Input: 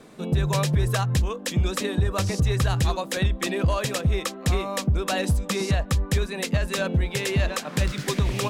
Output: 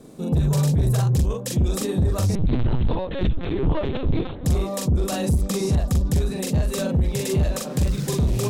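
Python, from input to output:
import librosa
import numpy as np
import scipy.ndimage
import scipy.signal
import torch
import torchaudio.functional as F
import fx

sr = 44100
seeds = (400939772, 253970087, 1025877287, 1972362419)

y = fx.peak_eq(x, sr, hz=1900.0, db=-14.5, octaves=2.8)
y = fx.doubler(y, sr, ms=42.0, db=-2)
y = fx.echo_stepped(y, sr, ms=387, hz=220.0, octaves=1.4, feedback_pct=70, wet_db=-9.5)
y = fx.lpc_vocoder(y, sr, seeds[0], excitation='pitch_kept', order=8, at=(2.35, 4.45))
y = 10.0 ** (-19.5 / 20.0) * np.tanh(y / 10.0 ** (-19.5 / 20.0))
y = F.gain(torch.from_numpy(y), 5.0).numpy()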